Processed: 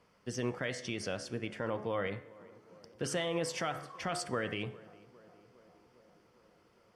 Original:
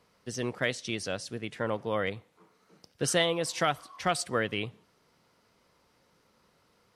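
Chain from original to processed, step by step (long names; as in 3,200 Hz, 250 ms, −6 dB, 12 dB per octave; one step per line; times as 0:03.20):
hum removal 70.92 Hz, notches 31
brickwall limiter −23.5 dBFS, peak gain reduction 9.5 dB
high-shelf EQ 6,400 Hz −9.5 dB
notch filter 3,900 Hz, Q 6
tape delay 406 ms, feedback 80%, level −19.5 dB, low-pass 1,300 Hz
convolution reverb, pre-delay 3 ms, DRR 18 dB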